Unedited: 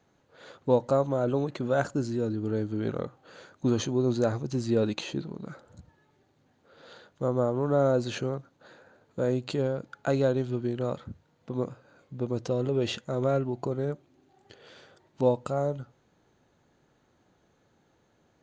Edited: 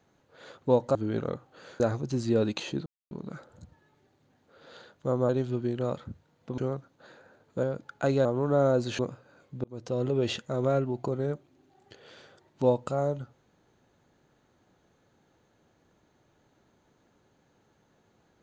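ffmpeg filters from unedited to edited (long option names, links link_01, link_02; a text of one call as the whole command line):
ffmpeg -i in.wav -filter_complex "[0:a]asplit=10[link_01][link_02][link_03][link_04][link_05][link_06][link_07][link_08][link_09][link_10];[link_01]atrim=end=0.952[link_11];[link_02]atrim=start=2.658:end=3.512[link_12];[link_03]atrim=start=4.208:end=5.27,asetpts=PTS-STARTPTS,afade=type=out:start_time=1.058:duration=0.004:curve=hsin,apad=pad_dur=0.25[link_13];[link_04]atrim=start=5.27:end=7.452,asetpts=PTS-STARTPTS,afade=type=in:duration=0.004:curve=hsin[link_14];[link_05]atrim=start=10.288:end=11.582[link_15];[link_06]atrim=start=8.188:end=9.242[link_16];[link_07]atrim=start=9.668:end=10.292[link_17];[link_08]atrim=start=7.448:end=8.192[link_18];[link_09]atrim=start=11.578:end=12.23,asetpts=PTS-STARTPTS,afade=type=out:start_time=0.648:duration=0.004:curve=hsin[link_19];[link_10]atrim=start=12.23,asetpts=PTS-STARTPTS,afade=type=in:duration=0.38[link_20];[link_11][link_12]acrossfade=duration=0.004:curve1=hsin:curve2=hsin[link_21];[link_13][link_14]concat=n=2:v=0:a=1[link_22];[link_21][link_22]acrossfade=duration=0.004:curve1=hsin:curve2=hsin[link_23];[link_23][link_15]acrossfade=duration=0.004:curve1=hsin:curve2=hsin[link_24];[link_24][link_16]acrossfade=duration=0.004:curve1=hsin:curve2=hsin[link_25];[link_25][link_17]acrossfade=duration=0.004:curve1=hsin:curve2=hsin[link_26];[link_26][link_18]acrossfade=duration=0.004:curve1=hsin:curve2=hsin[link_27];[link_19][link_20]concat=n=2:v=0:a=1[link_28];[link_27][link_28]acrossfade=duration=0.004:curve1=hsin:curve2=hsin" out.wav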